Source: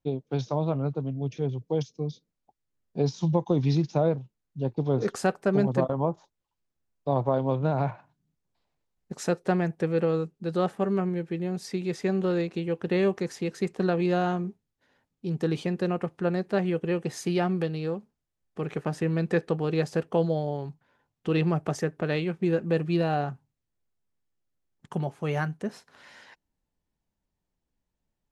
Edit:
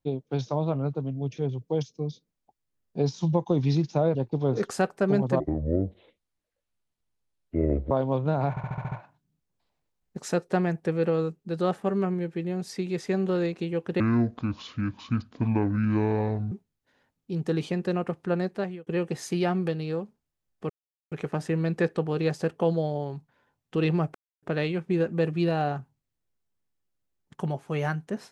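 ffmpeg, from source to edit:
-filter_complex "[0:a]asplit=16[s0][s1][s2][s3][s4][s5][s6][s7][s8][s9][s10][s11][s12][s13][s14][s15];[s0]atrim=end=4.152[s16];[s1]atrim=start=4.598:end=5.854[s17];[s2]atrim=start=5.85:end=7.28,asetpts=PTS-STARTPTS,asetrate=25137,aresample=44100[s18];[s3]atrim=start=7.276:end=7.942[s19];[s4]atrim=start=7.868:end=7.942[s20];[s5]atrim=start=7.868:end=7.942[s21];[s6]atrim=start=7.868:end=7.942[s22];[s7]atrim=start=7.868:end=7.942[s23];[s8]atrim=start=7.868:end=7.942[s24];[s9]atrim=start=7.868:end=12.954[s25];[s10]atrim=start=12.95:end=14.46,asetpts=PTS-STARTPTS,asetrate=26460,aresample=44100[s26];[s11]atrim=start=14.456:end=16.81,asetpts=PTS-STARTPTS,afade=t=out:st=1.944:d=0.41[s27];[s12]atrim=start=16.81:end=18.64,asetpts=PTS-STARTPTS,afade=t=in:d=0.004:c=hsin,afade=t=out:st=1.826:d=0.004:c=hsin,apad=pad_dur=0.42[s28];[s13]atrim=start=18.64:end=21.67,asetpts=PTS-STARTPTS,afade=t=in:d=0.004:c=hsin,afade=t=out:st=3.026:d=0.004:c=hsin[s29];[s14]atrim=start=21.67:end=21.95,asetpts=PTS-STARTPTS,volume=0[s30];[s15]atrim=start=21.95,asetpts=PTS-STARTPTS,afade=t=in:d=0.004:c=hsin[s31];[s16][s17]acrossfade=d=0.004:c1=hsin:c2=hsin[s32];[s32][s18]acrossfade=d=0.004:c1=hsin:c2=hsin[s33];[s33][s19]acrossfade=d=0.004:c1=hsin:c2=hsin[s34];[s34][s20]acrossfade=d=0.004:c1=hsin:c2=hsin[s35];[s35][s21]acrossfade=d=0.004:c1=hsin:c2=hsin[s36];[s36][s22]acrossfade=d=0.004:c1=hsin:c2=hsin[s37];[s37][s23]acrossfade=d=0.004:c1=hsin:c2=hsin[s38];[s38][s24]acrossfade=d=0.004:c1=hsin:c2=hsin[s39];[s39][s25]acrossfade=d=0.004:c1=hsin:c2=hsin[s40];[s40][s26]acrossfade=d=0.004:c1=hsin:c2=hsin[s41];[s27][s28][s29][s30][s31]concat=n=5:v=0:a=1[s42];[s41][s42]acrossfade=d=0.004:c1=hsin:c2=hsin"

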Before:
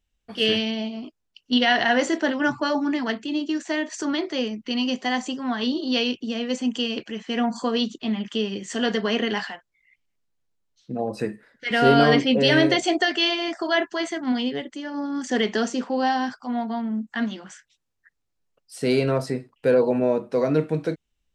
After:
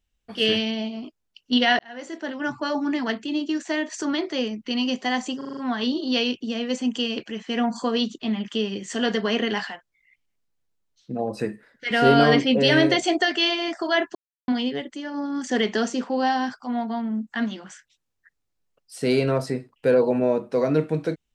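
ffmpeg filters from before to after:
-filter_complex "[0:a]asplit=9[s0][s1][s2][s3][s4][s5][s6][s7][s8];[s0]atrim=end=1.79,asetpts=PTS-STARTPTS,afade=t=out:st=1.786:d=0.004:c=hsin[s9];[s1]atrim=start=1.79:end=5.412,asetpts=PTS-STARTPTS,afade=t=in:d=1.21[s10];[s2]atrim=start=5.368:end=5.412[s11];[s3]atrim=start=5.368:end=5.412[s12];[s4]atrim=start=5.368:end=5.412[s13];[s5]atrim=start=5.368:end=5.412[s14];[s6]atrim=start=5.368:end=13.95,asetpts=PTS-STARTPTS,afade=t=out:st=8.578:d=0.004:c=hsin[s15];[s7]atrim=start=13.95:end=14.28,asetpts=PTS-STARTPTS,volume=0[s16];[s8]atrim=start=14.28,asetpts=PTS-STARTPTS,afade=t=in:d=0.004:c=hsin[s17];[s9][s10]concat=n=2:v=0:a=1[s18];[s18][s11]acrossfade=d=0.004:c1=hsin:c2=hsin[s19];[s19][s12]acrossfade=d=0.004:c1=hsin:c2=hsin[s20];[s20][s13]acrossfade=d=0.004:c1=hsin:c2=hsin[s21];[s21][s14]acrossfade=d=0.004:c1=hsin:c2=hsin[s22];[s15][s16][s17]concat=n=3:v=0:a=1[s23];[s22][s23]acrossfade=d=0.004:c1=hsin:c2=hsin"

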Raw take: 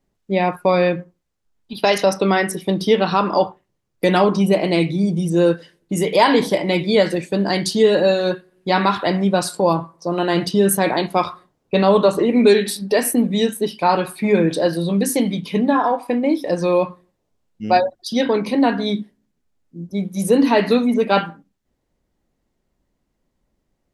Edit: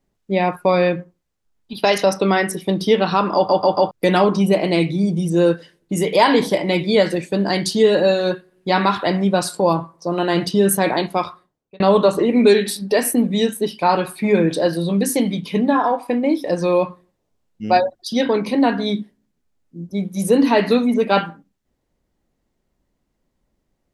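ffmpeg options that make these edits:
-filter_complex "[0:a]asplit=6[s0][s1][s2][s3][s4][s5];[s0]atrim=end=3.492[s6];[s1]atrim=start=3.348:end=3.492[s7];[s2]atrim=start=3.348:end=3.492[s8];[s3]atrim=start=3.348:end=3.492[s9];[s4]atrim=start=3.908:end=11.8,asetpts=PTS-STARTPTS,afade=t=out:st=7.082:d=0.81[s10];[s5]atrim=start=11.8,asetpts=PTS-STARTPTS,afade=t=in:d=0.004:c=hsin[s11];[s6][s7]acrossfade=d=0.004:c1=hsin:c2=hsin[s12];[s12][s8]acrossfade=d=0.004:c1=hsin:c2=hsin[s13];[s13][s9]acrossfade=d=0.004:c1=hsin:c2=hsin[s14];[s10][s11]concat=n=2:v=0:a=1[s15];[s14][s15]acrossfade=d=0.004:c1=hsin:c2=hsin"

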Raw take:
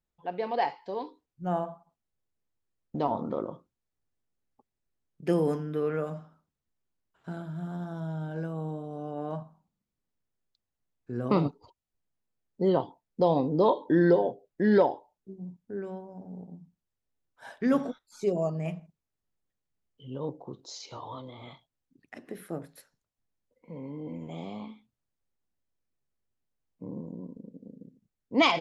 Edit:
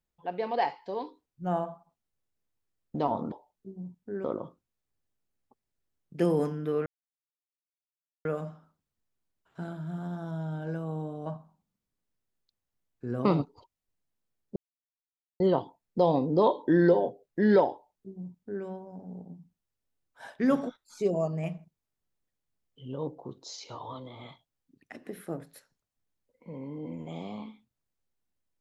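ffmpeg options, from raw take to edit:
-filter_complex "[0:a]asplit=6[s0][s1][s2][s3][s4][s5];[s0]atrim=end=3.322[s6];[s1]atrim=start=14.938:end=15.862[s7];[s2]atrim=start=3.318:end=5.94,asetpts=PTS-STARTPTS,afade=t=out:st=2.618:d=0.004:c=hsin,apad=pad_dur=1.39[s8];[s3]atrim=start=5.94:end=8.952,asetpts=PTS-STARTPTS,afade=t=in:d=0.004:c=hsin[s9];[s4]atrim=start=9.318:end=12.62,asetpts=PTS-STARTPTS,afade=t=out:st=3.298:d=0.004:c=hsin,apad=pad_dur=0.84[s10];[s5]atrim=start=12.62,asetpts=PTS-STARTPTS,afade=t=in:d=0.004:c=hsin[s11];[s6][s7]acrossfade=d=0.004:c1=hsin:c2=hsin[s12];[s8][s9]concat=n=2:v=0:a=1[s13];[s12][s13]acrossfade=d=0.004:c1=hsin:c2=hsin[s14];[s10][s11]concat=n=2:v=0:a=1[s15];[s14][s15]acrossfade=d=0.004:c1=hsin:c2=hsin"

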